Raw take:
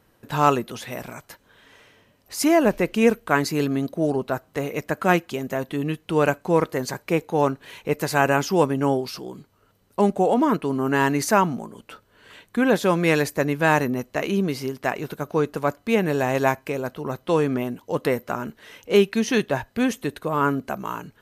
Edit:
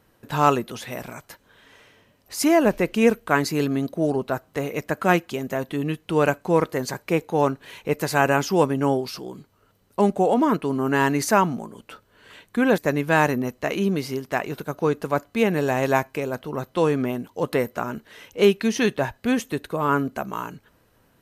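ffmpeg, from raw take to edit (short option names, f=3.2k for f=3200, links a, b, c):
-filter_complex "[0:a]asplit=2[a][b];[a]atrim=end=12.782[c];[b]atrim=start=13.298[d];[c][d]acrossfade=d=0.004:c1=hsin:c2=hsin"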